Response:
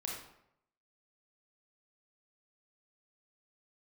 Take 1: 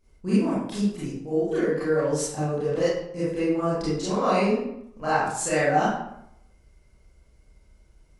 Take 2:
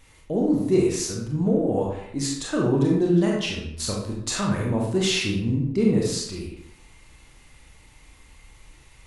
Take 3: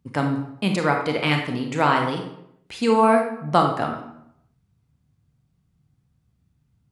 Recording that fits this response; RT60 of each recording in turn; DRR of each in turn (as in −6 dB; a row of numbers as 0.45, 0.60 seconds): 2; 0.75, 0.75, 0.75 seconds; −11.0, −2.0, 2.5 decibels